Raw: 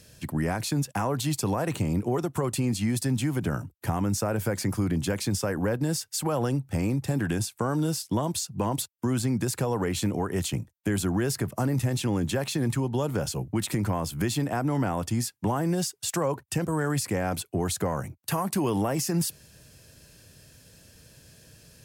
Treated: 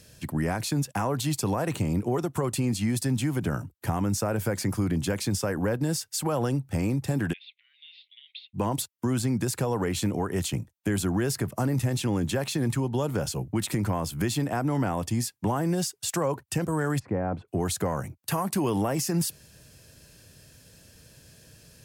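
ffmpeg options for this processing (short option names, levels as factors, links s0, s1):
-filter_complex "[0:a]asplit=3[s0][s1][s2];[s0]afade=t=out:st=7.32:d=0.02[s3];[s1]asuperpass=centerf=2800:order=12:qfactor=1.5,afade=t=in:st=7.32:d=0.02,afade=t=out:st=8.53:d=0.02[s4];[s2]afade=t=in:st=8.53:d=0.02[s5];[s3][s4][s5]amix=inputs=3:normalize=0,asettb=1/sr,asplit=3[s6][s7][s8];[s6]atrim=end=14.954[s9];[s7]atrim=start=14.95:end=15.36,asetpts=PTS-STARTPTS,afade=t=in:d=0.004:c=qsin,afade=t=out:st=0.406:d=0.004:c=qsin,bandreject=f=1400:w=5.7[s10];[s8]atrim=start=15.356[s11];[s9][s10]acrossfade=d=0.004:c1=hsin:c2=qsin[s12];[s12][s11]acrossfade=d=0.004:c1=qsin:c2=hsin,asplit=3[s13][s14][s15];[s13]afade=t=out:st=16.98:d=0.02[s16];[s14]lowpass=1100,afade=t=in:st=16.98:d=0.02,afade=t=out:st=17.47:d=0.02[s17];[s15]afade=t=in:st=17.47:d=0.02[s18];[s16][s17][s18]amix=inputs=3:normalize=0"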